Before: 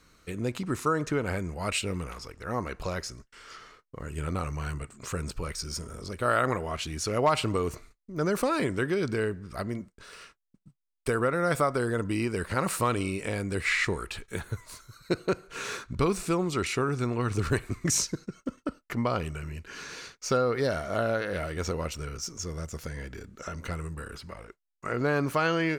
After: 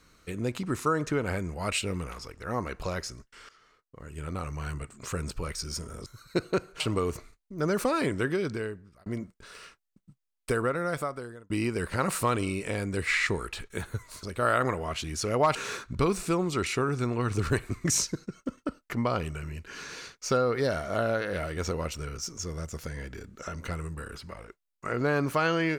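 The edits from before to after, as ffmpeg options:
-filter_complex "[0:a]asplit=8[s0][s1][s2][s3][s4][s5][s6][s7];[s0]atrim=end=3.49,asetpts=PTS-STARTPTS,afade=t=out:st=3.486:d=0.004:c=hsin:silence=0.158489[s8];[s1]atrim=start=3.49:end=6.062,asetpts=PTS-STARTPTS,afade=t=in:d=1.42:silence=0.158489[s9];[s2]atrim=start=14.808:end=15.552[s10];[s3]atrim=start=7.378:end=9.64,asetpts=PTS-STARTPTS,afade=t=out:st=1.492:d=0.77[s11];[s4]atrim=start=9.64:end=12.08,asetpts=PTS-STARTPTS,afade=t=in:d=0.004:c=hsin,afade=t=out:st=1.44:d=1[s12];[s5]atrim=start=12.08:end=14.812,asetpts=PTS-STARTPTS,afade=t=in:d=0.004:c=hsin[s13];[s6]atrim=start=6.058:end=7.382[s14];[s7]atrim=start=15.548[s15];[s8][s9]concat=n=2:v=0:a=1[s16];[s16][s10]acrossfade=d=0.004:c1=hsin:c2=hsin[s17];[s11][s12][s13]concat=n=3:v=0:a=1[s18];[s17][s18]acrossfade=d=0.004:c1=hsin:c2=hsin[s19];[s19][s14]acrossfade=d=0.004:c1=hsin:c2=hsin[s20];[s20][s15]acrossfade=d=0.004:c1=hsin:c2=hsin"

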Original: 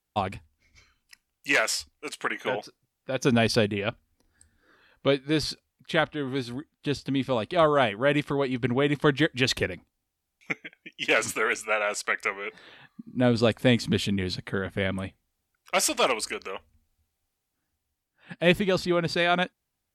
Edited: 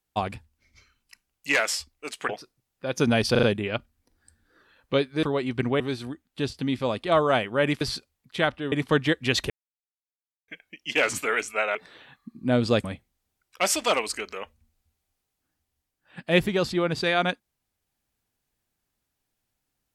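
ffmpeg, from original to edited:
-filter_complex "[0:a]asplit=13[s0][s1][s2][s3][s4][s5][s6][s7][s8][s9][s10][s11][s12];[s0]atrim=end=2.292[s13];[s1]atrim=start=2.538:end=3.602[s14];[s2]atrim=start=3.558:end=3.602[s15];[s3]atrim=start=3.558:end=3.602[s16];[s4]atrim=start=3.558:end=5.362[s17];[s5]atrim=start=8.278:end=8.852[s18];[s6]atrim=start=6.268:end=8.282[s19];[s7]atrim=start=5.358:end=6.272[s20];[s8]atrim=start=8.848:end=9.63,asetpts=PTS-STARTPTS,afade=t=out:st=0.778:d=0.004:c=hsin[s21];[s9]atrim=start=9.63:end=10.61,asetpts=PTS-STARTPTS,volume=0[s22];[s10]atrim=start=10.61:end=11.882,asetpts=PTS-STARTPTS,afade=t=in:d=0.004:c=hsin[s23];[s11]atrim=start=12.468:end=13.562[s24];[s12]atrim=start=14.968[s25];[s13][s14]acrossfade=d=0.004:c1=hsin:c2=hsin[s26];[s26][s15]acrossfade=d=0.004:c1=hsin:c2=hsin[s27];[s27][s16]acrossfade=d=0.004:c1=hsin:c2=hsin[s28];[s28][s17]acrossfade=d=0.004:c1=hsin:c2=hsin[s29];[s29][s18]acrossfade=d=0.004:c1=hsin:c2=hsin[s30];[s30][s19]acrossfade=d=0.004:c1=hsin:c2=hsin[s31];[s31][s20]acrossfade=d=0.004:c1=hsin:c2=hsin[s32];[s21][s22][s23]concat=n=3:v=0:a=1[s33];[s32][s33]acrossfade=d=0.004:c1=hsin:c2=hsin[s34];[s34][s24]acrossfade=d=0.004:c1=hsin:c2=hsin[s35];[s35][s25]acrossfade=d=0.004:c1=hsin:c2=hsin"

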